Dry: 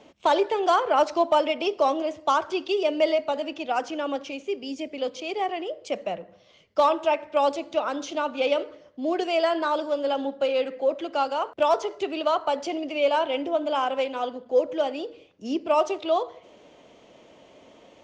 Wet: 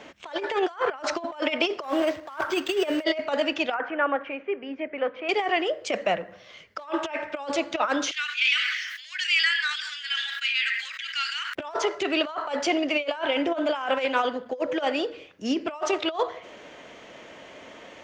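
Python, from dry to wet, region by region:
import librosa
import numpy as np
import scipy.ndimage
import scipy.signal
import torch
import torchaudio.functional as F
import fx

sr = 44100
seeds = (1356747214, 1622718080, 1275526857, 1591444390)

y = fx.chain(x, sr, fx.block_float(bits=5),
    fx.resample_linear(factor=4), at=(1.83, 3.04))
y = fx.chain(y, sr, fx.lowpass(hz=2000.0, slope=24),
    fx.low_shelf(hz=400.0, db=-9.5), at=(3.74, 5.29))
y = fx.chain(y, sr, fx.steep_highpass(hz=1800.0, slope=36),
    fx.sustainer(db_per_s=41.0), at=(8.11, 11.55))
y = fx.peak_eq(y, sr, hz=1700.0, db=12.0, octaves=1.1)
y = fx.over_compress(y, sr, threshold_db=-25.0, ratio=-0.5)
y = fx.high_shelf(y, sr, hz=5200.0, db=5.0)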